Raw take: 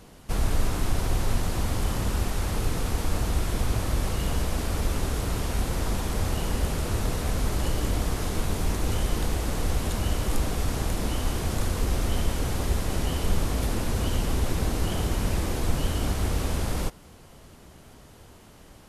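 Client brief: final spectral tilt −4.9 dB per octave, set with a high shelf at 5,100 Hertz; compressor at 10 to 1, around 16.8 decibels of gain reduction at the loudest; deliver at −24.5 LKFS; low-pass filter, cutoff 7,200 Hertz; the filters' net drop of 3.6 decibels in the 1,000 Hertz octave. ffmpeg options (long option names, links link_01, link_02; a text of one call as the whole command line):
ffmpeg -i in.wav -af "lowpass=7200,equalizer=frequency=1000:width_type=o:gain=-5,highshelf=frequency=5100:gain=4.5,acompressor=threshold=-36dB:ratio=10,volume=18.5dB" out.wav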